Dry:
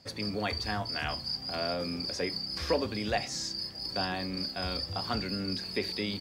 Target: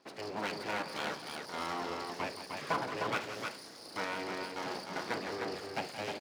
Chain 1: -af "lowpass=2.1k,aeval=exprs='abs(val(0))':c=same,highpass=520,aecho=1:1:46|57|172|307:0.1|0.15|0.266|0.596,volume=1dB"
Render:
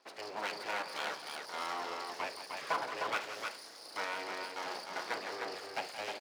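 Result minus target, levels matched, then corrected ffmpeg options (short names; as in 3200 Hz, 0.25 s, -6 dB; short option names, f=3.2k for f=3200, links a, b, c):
250 Hz band -8.0 dB
-af "lowpass=2.1k,aeval=exprs='abs(val(0))':c=same,highpass=220,aecho=1:1:46|57|172|307:0.1|0.15|0.266|0.596,volume=1dB"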